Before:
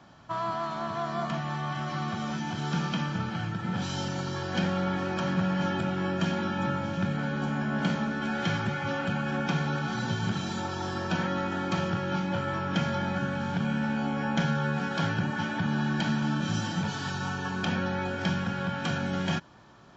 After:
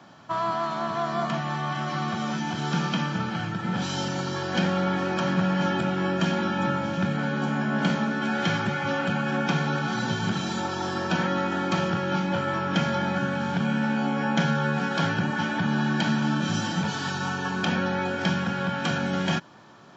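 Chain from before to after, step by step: HPF 140 Hz 12 dB/oct; gain +4.5 dB

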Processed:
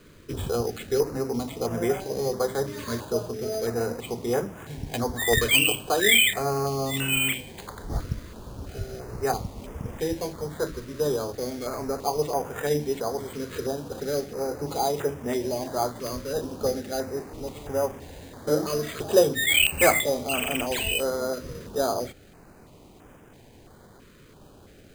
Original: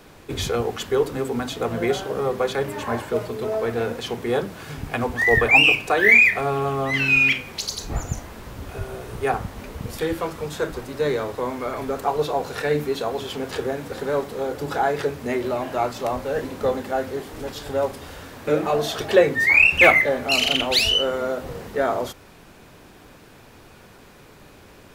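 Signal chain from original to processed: air absorption 220 m; careless resampling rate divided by 8×, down none, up hold; stepped notch 3 Hz 790–4200 Hz; gain -2 dB

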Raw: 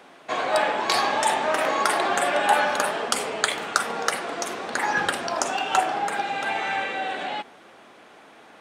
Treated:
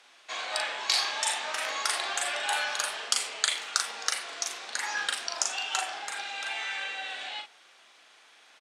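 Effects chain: band-pass 5400 Hz, Q 0.85; doubler 39 ms -5 dB; gain +1 dB

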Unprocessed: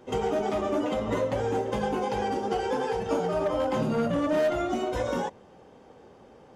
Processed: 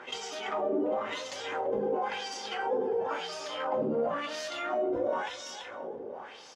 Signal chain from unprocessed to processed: on a send: feedback echo 0.336 s, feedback 31%, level -8 dB; on the sum: LFO band-pass sine 0.96 Hz 360–5600 Hz; fast leveller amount 50%

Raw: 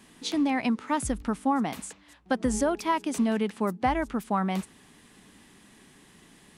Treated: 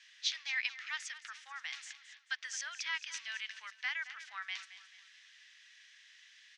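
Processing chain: elliptic band-pass 1700–6000 Hz, stop band 70 dB; on a send: feedback echo 0.219 s, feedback 37%, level -14 dB; on the sum: gain +1 dB

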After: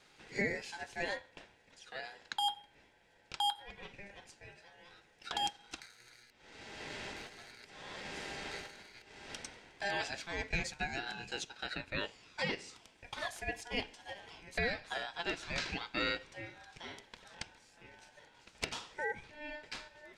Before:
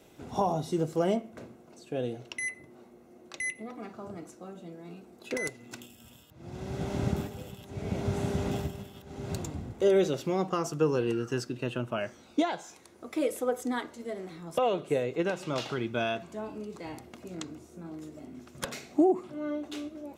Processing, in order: HPF 1200 Hz 12 dB/oct; ring modulator 1200 Hz; air absorption 84 m; gain +6 dB

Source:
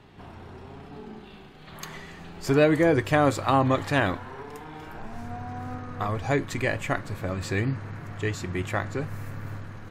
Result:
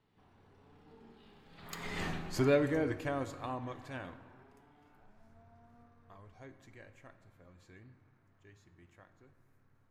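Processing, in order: Doppler pass-by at 2.04, 19 m/s, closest 1.3 m; on a send: reverb RT60 1.7 s, pre-delay 3 ms, DRR 10.5 dB; on the sum: gain +7.5 dB

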